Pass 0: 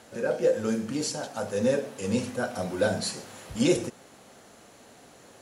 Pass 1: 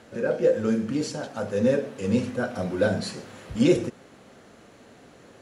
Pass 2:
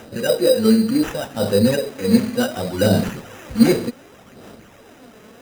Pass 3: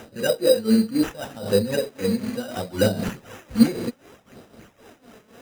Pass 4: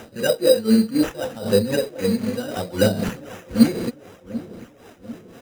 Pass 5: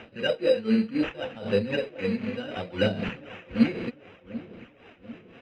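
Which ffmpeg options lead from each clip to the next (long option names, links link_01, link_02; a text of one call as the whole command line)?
ffmpeg -i in.wav -af "lowpass=frequency=2100:poles=1,equalizer=frequency=810:width=1.5:gain=-5.5,volume=4.5dB" out.wav
ffmpeg -i in.wav -af "aphaser=in_gain=1:out_gain=1:delay=4.7:decay=0.55:speed=0.67:type=sinusoidal,acrusher=samples=10:mix=1:aa=0.000001,volume=4.5dB" out.wav
ffmpeg -i in.wav -af "tremolo=f=3.9:d=0.82,volume=-1dB" out.wav
ffmpeg -i in.wav -filter_complex "[0:a]asplit=2[link_01][link_02];[link_02]adelay=743,lowpass=frequency=920:poles=1,volume=-14.5dB,asplit=2[link_03][link_04];[link_04]adelay=743,lowpass=frequency=920:poles=1,volume=0.53,asplit=2[link_05][link_06];[link_06]adelay=743,lowpass=frequency=920:poles=1,volume=0.53,asplit=2[link_07][link_08];[link_08]adelay=743,lowpass=frequency=920:poles=1,volume=0.53,asplit=2[link_09][link_10];[link_10]adelay=743,lowpass=frequency=920:poles=1,volume=0.53[link_11];[link_01][link_03][link_05][link_07][link_09][link_11]amix=inputs=6:normalize=0,volume=2dB" out.wav
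ffmpeg -i in.wav -af "lowpass=frequency=2600:width_type=q:width=3.4,volume=-7dB" out.wav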